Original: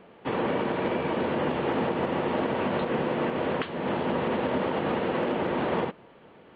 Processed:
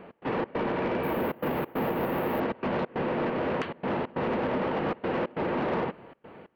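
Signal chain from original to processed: peaking EQ 3.5 kHz -8 dB 0.44 oct; in parallel at -2 dB: compression, threshold -37 dBFS, peak gain reduction 13.5 dB; on the sum: trance gate "x.xx.xxxxxx" 137 bpm -24 dB; saturation -22.5 dBFS, distortion -15 dB; 1.03–2.40 s: careless resampling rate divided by 3×, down filtered, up hold

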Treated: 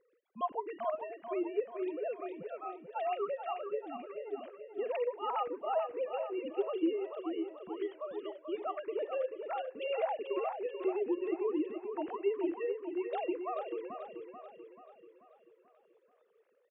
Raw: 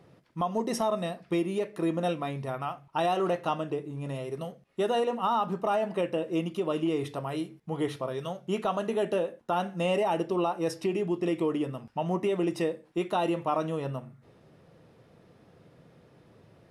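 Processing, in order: formants replaced by sine waves; feedback delay 436 ms, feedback 50%, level -7.5 dB; trim -7.5 dB

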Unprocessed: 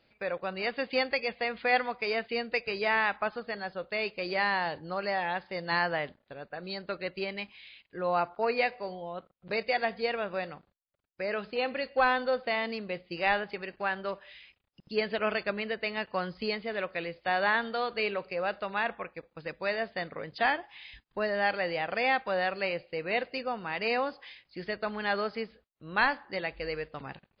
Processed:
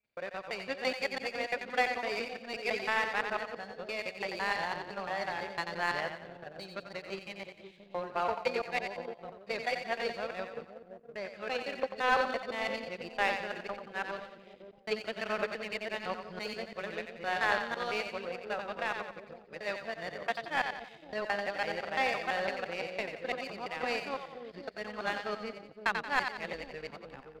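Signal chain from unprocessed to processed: time reversed locally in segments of 169 ms; two-band feedback delay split 590 Hz, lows 518 ms, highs 89 ms, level -4.5 dB; power-law waveshaper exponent 1.4

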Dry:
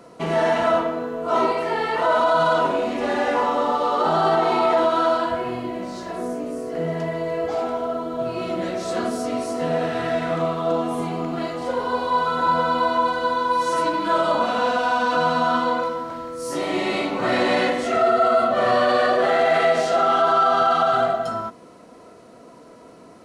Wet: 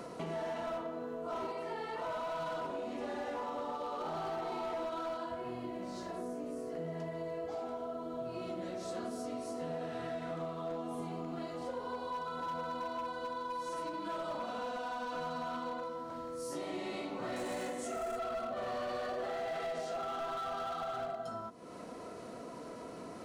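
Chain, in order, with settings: hard clipper -15.5 dBFS, distortion -16 dB; 17.36–18.19 s: resonant high shelf 5.8 kHz +9.5 dB, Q 1.5; compression 3:1, threshold -46 dBFS, peak gain reduction 20 dB; dynamic bell 2 kHz, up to -4 dB, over -52 dBFS, Q 0.77; trim +2.5 dB

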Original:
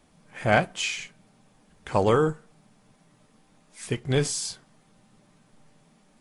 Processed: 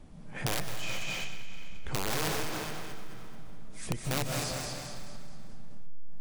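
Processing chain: tilt EQ -3.5 dB/octave; integer overflow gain 9 dB; compression 10:1, threshold -31 dBFS, peak gain reduction 18 dB; treble shelf 2.9 kHz +8.5 dB; thinning echo 215 ms, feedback 49%, high-pass 380 Hz, level -6 dB; on a send at -1.5 dB: reverberation RT60 2.3 s, pre-delay 110 ms; on the sum: transformer saturation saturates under 64 Hz

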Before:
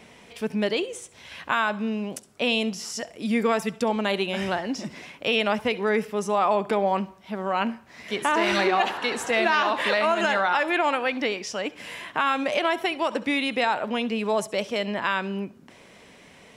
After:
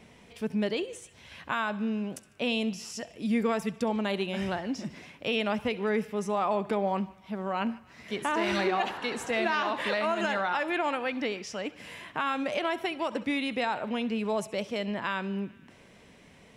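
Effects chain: bass shelf 230 Hz +9 dB; on a send: band-passed feedback delay 149 ms, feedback 71%, band-pass 2.3 kHz, level -20.5 dB; on the sum: trim -7 dB

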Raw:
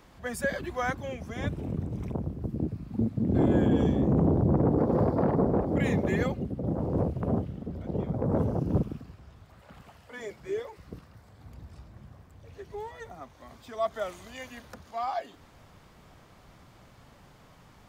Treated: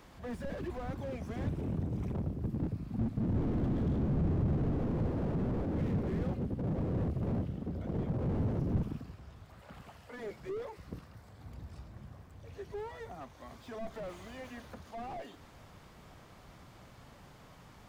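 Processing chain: single-diode clipper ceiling -25.5 dBFS; slew-rate limiter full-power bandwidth 6.8 Hz

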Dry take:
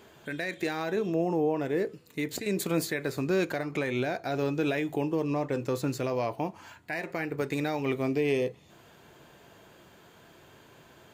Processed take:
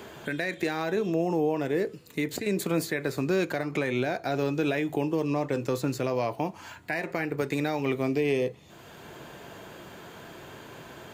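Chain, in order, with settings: three bands compressed up and down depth 40%; trim +1.5 dB

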